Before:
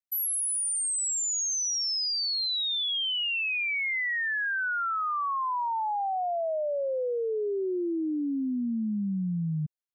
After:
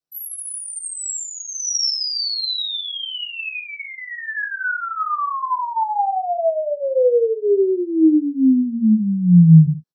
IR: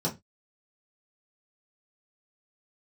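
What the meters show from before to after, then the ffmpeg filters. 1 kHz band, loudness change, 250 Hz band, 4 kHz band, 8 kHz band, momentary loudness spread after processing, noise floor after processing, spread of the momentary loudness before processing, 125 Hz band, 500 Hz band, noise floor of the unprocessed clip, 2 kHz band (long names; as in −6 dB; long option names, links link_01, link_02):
+7.0 dB, +9.0 dB, +15.0 dB, +4.5 dB, +1.5 dB, 13 LU, −35 dBFS, 4 LU, can't be measured, +11.5 dB, −29 dBFS, +2.0 dB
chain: -filter_complex "[0:a]aecho=1:1:56|69:0.355|0.168[link_01];[1:a]atrim=start_sample=2205,afade=type=out:start_time=0.15:duration=0.01,atrim=end_sample=7056[link_02];[link_01][link_02]afir=irnorm=-1:irlink=0,volume=-2dB"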